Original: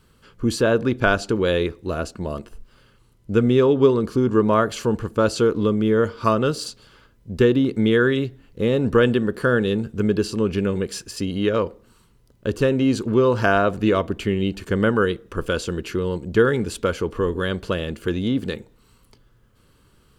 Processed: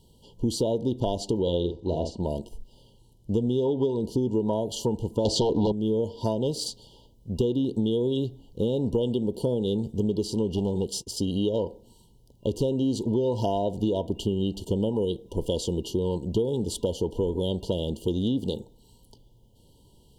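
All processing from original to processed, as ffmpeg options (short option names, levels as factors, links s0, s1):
-filter_complex "[0:a]asettb=1/sr,asplit=3[s0][s1][s2];[s0]atrim=end=1.424[s3];[s1]atrim=start=1.42:end=2.23,asetpts=PTS-STARTPTS,afade=t=in:d=0.004:c=qsin,afade=t=out:st=0.806:d=0.004:c=qsin,lowpass=4900,asplit=2[s4][s5];[s5]adelay=46,volume=0.473[s6];[s4][s6]amix=inputs=2:normalize=0,atrim=end_sample=35721[s7];[s2]atrim=start=2.226[s8];[s3][s7]acrossfade=d=0.004:c1=hsin:c2=qsin[s9];[s9][s8]acrossfade=d=0.004:c1=qsin:c2=hsin,asettb=1/sr,asplit=3[s10][s11][s12];[s10]atrim=end=5.254[s13];[s11]atrim=start=5.25:end=5.72,asetpts=PTS-STARTPTS,afade=t=in:d=0.004:c=qsin,afade=t=out:st=0.466:d=0.004:c=qsin,lowpass=6000,aeval=exprs='0.473*sin(PI/2*3.16*val(0)/0.473)':c=same[s14];[s12]atrim=start=5.716[s15];[s13][s14]acrossfade=d=0.004:c1=hsin:c2=qsin[s16];[s16][s15]acrossfade=d=0.004:c1=qsin:c2=hsin,asettb=1/sr,asplit=3[s17][s18][s19];[s17]atrim=end=10.564[s20];[s18]atrim=start=10.56:end=11.07,asetpts=PTS-STARTPTS,afade=t=in:d=0.004:c=qsin,afade=t=out:st=0.506:d=0.004:c=qsin,agate=range=0.0224:threshold=0.0178:ratio=3:release=100:detection=peak,aeval=exprs='clip(val(0),-1,0.1)':c=same[s21];[s19]atrim=start=11.066[s22];[s20][s21]acrossfade=d=0.004:c1=hsin:c2=qsin[s23];[s23][s22]acrossfade=d=0.004:c1=qsin:c2=hsin,afftfilt=real='re*(1-between(b*sr/4096,1000,2800))':imag='im*(1-between(b*sr/4096,1000,2800))':win_size=4096:overlap=0.75,equalizer=f=880:w=6.9:g=2,acompressor=threshold=0.0794:ratio=6"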